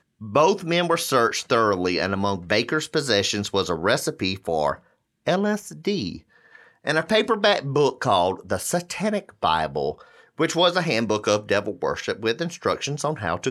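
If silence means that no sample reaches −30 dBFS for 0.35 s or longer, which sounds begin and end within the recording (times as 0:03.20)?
0:05.27–0:06.16
0:06.87–0:09.92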